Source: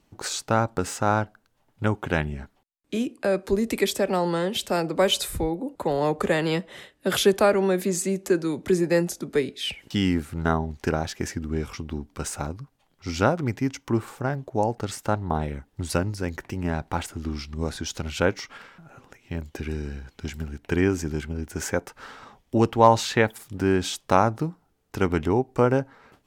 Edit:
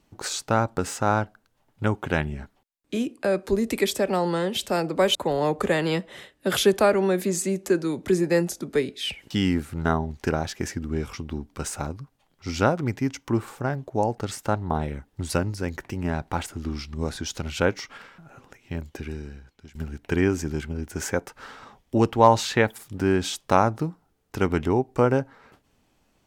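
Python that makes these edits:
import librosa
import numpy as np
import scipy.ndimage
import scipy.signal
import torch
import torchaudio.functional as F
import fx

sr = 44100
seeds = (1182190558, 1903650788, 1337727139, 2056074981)

y = fx.edit(x, sr, fx.cut(start_s=5.15, length_s=0.6),
    fx.fade_out_to(start_s=19.34, length_s=1.01, floor_db=-19.0), tone=tone)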